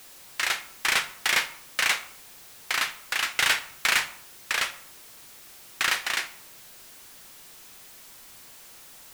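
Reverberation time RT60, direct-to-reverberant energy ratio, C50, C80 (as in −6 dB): 0.65 s, 10.0 dB, 14.5 dB, 17.0 dB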